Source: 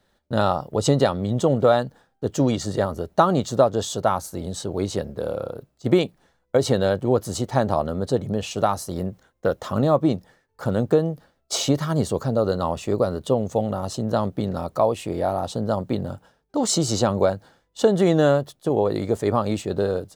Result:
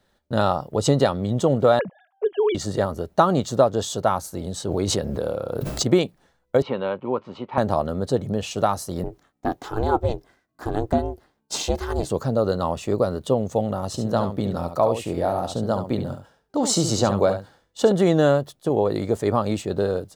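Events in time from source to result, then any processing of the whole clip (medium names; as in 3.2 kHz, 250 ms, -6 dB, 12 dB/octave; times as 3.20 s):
1.79–2.55 s: formants replaced by sine waves
4.65–5.90 s: swell ahead of each attack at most 22 dB/s
6.62–7.58 s: cabinet simulation 270–2700 Hz, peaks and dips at 320 Hz -6 dB, 460 Hz -5 dB, 690 Hz -9 dB, 1 kHz +7 dB, 1.7 kHz -9 dB, 2.5 kHz +6 dB
9.04–12.10 s: ring modulator 220 Hz
13.87–17.92 s: delay 70 ms -8.5 dB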